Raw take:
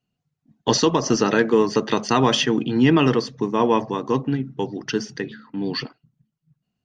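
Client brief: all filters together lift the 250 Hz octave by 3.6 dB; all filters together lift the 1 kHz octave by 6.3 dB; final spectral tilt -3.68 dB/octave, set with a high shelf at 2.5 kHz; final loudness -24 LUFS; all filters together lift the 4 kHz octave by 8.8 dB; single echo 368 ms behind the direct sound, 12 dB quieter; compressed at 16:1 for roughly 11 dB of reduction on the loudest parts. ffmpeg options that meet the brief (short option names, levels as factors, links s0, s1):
-af "equalizer=f=250:t=o:g=4,equalizer=f=1000:t=o:g=5.5,highshelf=f=2500:g=8,equalizer=f=4000:t=o:g=4,acompressor=threshold=0.112:ratio=16,aecho=1:1:368:0.251,volume=1.06"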